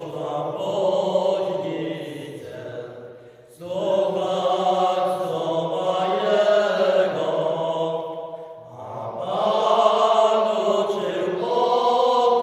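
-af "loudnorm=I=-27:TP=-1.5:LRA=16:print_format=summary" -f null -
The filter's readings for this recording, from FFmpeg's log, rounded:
Input Integrated:    -20.8 LUFS
Input True Peak:      -3.7 dBTP
Input LRA:             6.4 LU
Input Threshold:     -31.6 LUFS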